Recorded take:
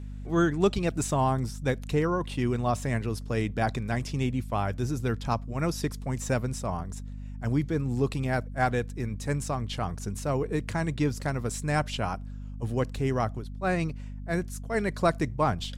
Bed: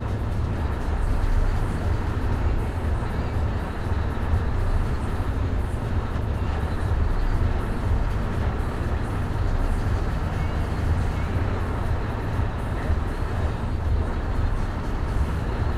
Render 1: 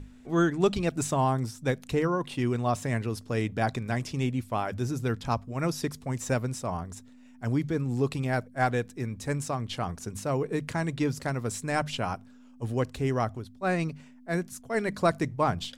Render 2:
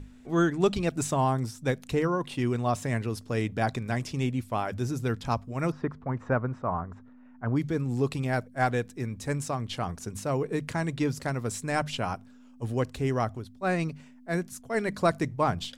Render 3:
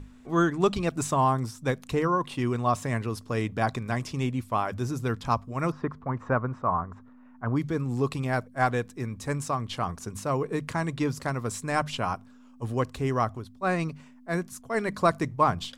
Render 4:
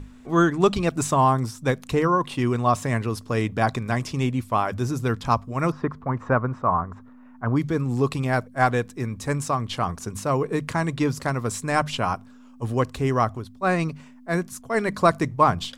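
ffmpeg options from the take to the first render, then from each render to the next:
-af "bandreject=f=50:t=h:w=6,bandreject=f=100:t=h:w=6,bandreject=f=150:t=h:w=6,bandreject=f=200:t=h:w=6"
-filter_complex "[0:a]asplit=3[a][b][c];[a]afade=t=out:st=5.7:d=0.02[d];[b]lowpass=f=1.3k:t=q:w=2,afade=t=in:st=5.7:d=0.02,afade=t=out:st=7.55:d=0.02[e];[c]afade=t=in:st=7.55:d=0.02[f];[d][e][f]amix=inputs=3:normalize=0"
-af "equalizer=f=1.1k:t=o:w=0.46:g=7.5"
-af "volume=4.5dB"

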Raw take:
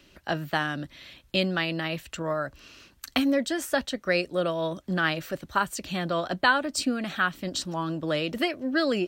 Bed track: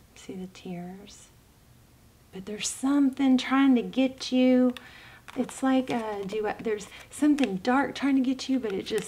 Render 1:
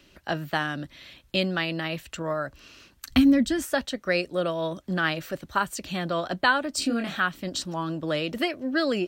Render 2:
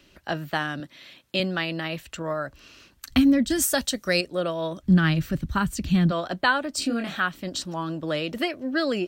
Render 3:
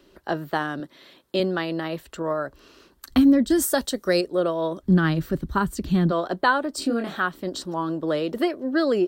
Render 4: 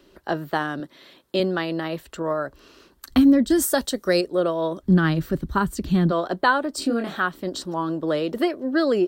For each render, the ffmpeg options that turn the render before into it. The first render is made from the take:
-filter_complex "[0:a]asplit=3[a][b][c];[a]afade=t=out:st=3.1:d=0.02[d];[b]asubboost=boost=11.5:cutoff=180,afade=t=in:st=3.1:d=0.02,afade=t=out:st=3.62:d=0.02[e];[c]afade=t=in:st=3.62:d=0.02[f];[d][e][f]amix=inputs=3:normalize=0,asettb=1/sr,asplit=3[g][h][i];[g]atrim=end=6.794[j];[h]atrim=start=6.79:end=7.2,asetpts=PTS-STARTPTS,afade=t=in:d=0.004:c=qsin,afade=t=out:st=0.406:d=0.004:c=qsin,asplit=2[k][l];[l]adelay=26,volume=-3.5dB[m];[k][m]amix=inputs=2:normalize=0,atrim=end_sample=18081[n];[i]atrim=start=7.196[o];[j][n]acrossfade=d=0.004:c1=hsin:c2=qsin[p];[p][o]acrossfade=d=0.004:c1=qsin:c2=hsin"
-filter_complex "[0:a]asettb=1/sr,asplit=3[a][b][c];[a]atrim=end=0.804[d];[b]atrim=start=0.8:end=1.4,asetpts=PTS-STARTPTS,afade=t=in:d=0.004:c=qsin,afade=t=out:st=0.596:d=0.004:c=qsin,highpass=160[e];[c]atrim=start=1.396[f];[d][e]acrossfade=d=0.004:c1=hsin:c2=qsin[g];[g][f]acrossfade=d=0.004:c1=qsin:c2=hsin,asettb=1/sr,asplit=3[h][i][j];[h]atrim=end=3.504[k];[i]atrim=start=3.5:end=4.21,asetpts=PTS-STARTPTS,afade=t=in:d=0.004:c=qsin,afade=t=out:st=0.706:d=0.004:c=qsin,bass=f=250:g=5,treble=f=4k:g=14[l];[j]atrim=start=4.206[m];[k][l]acrossfade=d=0.004:c1=hsin:c2=qsin[n];[n][m]acrossfade=d=0.004:c1=qsin:c2=hsin,asplit=3[o][p][q];[o]afade=t=out:st=4.82:d=0.02[r];[p]asubboost=boost=11.5:cutoff=170,afade=t=in:st=4.82:d=0.02,afade=t=out:st=6.1:d=0.02[s];[q]afade=t=in:st=6.1:d=0.02[t];[r][s][t]amix=inputs=3:normalize=0"
-af "equalizer=f=100:t=o:w=0.67:g=-9,equalizer=f=400:t=o:w=0.67:g=9,equalizer=f=1k:t=o:w=0.67:g=4,equalizer=f=2.5k:t=o:w=0.67:g=-8,equalizer=f=6.3k:t=o:w=0.67:g=-5"
-af "volume=1dB"

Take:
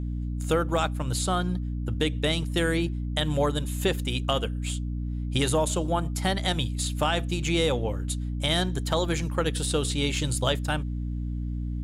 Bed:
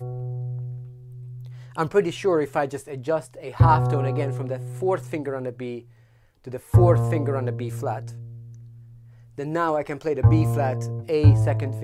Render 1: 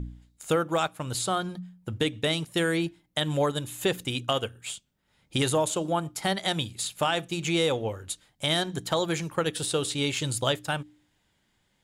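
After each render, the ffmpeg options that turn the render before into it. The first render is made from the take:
-af "bandreject=f=60:t=h:w=4,bandreject=f=120:t=h:w=4,bandreject=f=180:t=h:w=4,bandreject=f=240:t=h:w=4,bandreject=f=300:t=h:w=4"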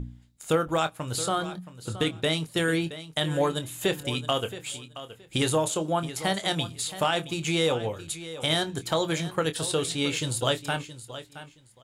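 -filter_complex "[0:a]asplit=2[a][b];[b]adelay=25,volume=-11dB[c];[a][c]amix=inputs=2:normalize=0,aecho=1:1:672|1344:0.2|0.0399"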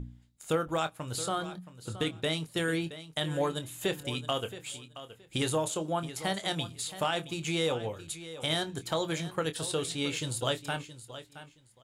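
-af "volume=-5dB"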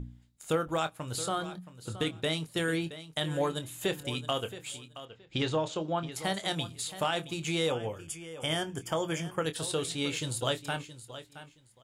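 -filter_complex "[0:a]asettb=1/sr,asplit=3[a][b][c];[a]atrim=end=5.054[d];[b]atrim=start=5.05:end=6.12,asetpts=PTS-STARTPTS,afade=t=in:d=0.004:c=qsin,afade=t=out:st=1.066:d=0.004:c=qsin,lowpass=f=5.5k:w=0.5412,lowpass=f=5.5k:w=1.3066[e];[c]atrim=start=6.116[f];[d][e]acrossfade=d=0.004:c1=hsin:c2=qsin[g];[g][f]acrossfade=d=0.004:c1=qsin:c2=hsin,asettb=1/sr,asplit=3[h][i][j];[h]atrim=end=7.704[k];[i]atrim=start=7.7:end=9.46,asetpts=PTS-STARTPTS,afade=t=in:d=0.004:c=qsin,afade=t=out:st=1.756:d=0.004:c=qsin,asuperstop=centerf=4000:order=8:qfactor=3.7[l];[j]atrim=start=9.456[m];[k][l]acrossfade=d=0.004:c1=hsin:c2=qsin[n];[n][m]acrossfade=d=0.004:c1=qsin:c2=hsin"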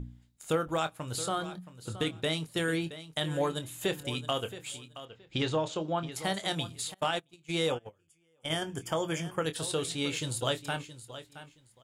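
-filter_complex "[0:a]asettb=1/sr,asplit=3[a][b][c];[a]atrim=end=6.944[d];[b]atrim=start=6.94:end=8.62,asetpts=PTS-STARTPTS,afade=t=in:d=0.004:c=qsin,afade=t=out:st=1.676:d=0.004:c=qsin,agate=range=-26dB:threshold=-32dB:ratio=16:release=100:detection=peak[e];[c]atrim=start=8.616[f];[d][e]acrossfade=d=0.004:c1=hsin:c2=qsin[g];[g][f]acrossfade=d=0.004:c1=qsin:c2=hsin"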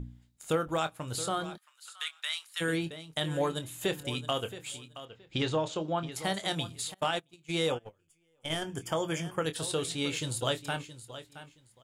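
-filter_complex "[0:a]asplit=3[a][b][c];[a]afade=t=out:st=1.56:d=0.02[d];[b]highpass=f=1.2k:w=0.5412,highpass=f=1.2k:w=1.3066,afade=t=in:st=1.56:d=0.02,afade=t=out:st=2.6:d=0.02[e];[c]afade=t=in:st=2.6:d=0.02[f];[d][e][f]amix=inputs=3:normalize=0,asettb=1/sr,asplit=3[g][h][i];[g]atrim=end=7.834[j];[h]atrim=start=7.83:end=8.65,asetpts=PTS-STARTPTS,afade=t=in:d=0.004:c=qsin,afade=t=out:st=0.816:d=0.004:c=qsin,aeval=exprs='if(lt(val(0),0),0.708*val(0),val(0))':c=same[k];[i]atrim=start=8.646[l];[j][k]acrossfade=d=0.004:c1=hsin:c2=qsin[m];[m][l]acrossfade=d=0.004:c1=qsin:c2=hsin"

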